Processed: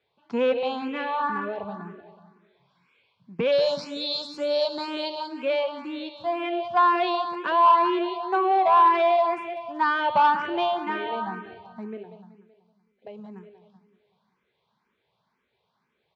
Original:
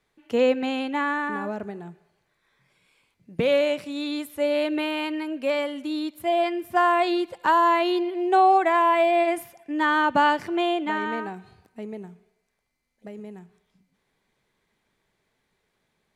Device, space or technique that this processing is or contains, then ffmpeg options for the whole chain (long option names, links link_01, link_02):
barber-pole phaser into a guitar amplifier: -filter_complex "[0:a]asplit=3[link_01][link_02][link_03];[link_01]afade=type=out:start_time=3.51:duration=0.02[link_04];[link_02]highshelf=frequency=3600:width_type=q:width=3:gain=12,afade=type=in:start_time=3.51:duration=0.02,afade=type=out:start_time=5.15:duration=0.02[link_05];[link_03]afade=type=in:start_time=5.15:duration=0.02[link_06];[link_04][link_05][link_06]amix=inputs=3:normalize=0,aecho=1:1:189|378|567|756|945:0.335|0.154|0.0709|0.0326|0.015,asplit=2[link_07][link_08];[link_08]afreqshift=2[link_09];[link_07][link_09]amix=inputs=2:normalize=1,asoftclip=type=tanh:threshold=-17.5dB,highpass=110,equalizer=frequency=300:width_type=q:width=4:gain=-8,equalizer=frequency=1000:width_type=q:width=4:gain=6,equalizer=frequency=1900:width_type=q:width=4:gain=-7,lowpass=frequency=4600:width=0.5412,lowpass=frequency=4600:width=1.3066,volume=2.5dB"